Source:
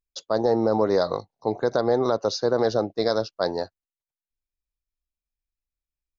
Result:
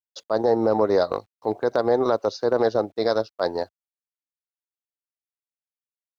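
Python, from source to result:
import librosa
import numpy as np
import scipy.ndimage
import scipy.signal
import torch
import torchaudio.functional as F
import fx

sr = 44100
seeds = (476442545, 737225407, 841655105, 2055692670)

y = fx.peak_eq(x, sr, hz=150.0, db=-7.5, octaves=0.89)
y = fx.quant_dither(y, sr, seeds[0], bits=10, dither='none')
y = scipy.signal.sosfilt(scipy.signal.butter(2, 61.0, 'highpass', fs=sr, output='sos'), y)
y = fx.high_shelf(y, sr, hz=5300.0, db=-9.5)
y = fx.transient(y, sr, attack_db=-3, sustain_db=-7)
y = y * librosa.db_to_amplitude(3.0)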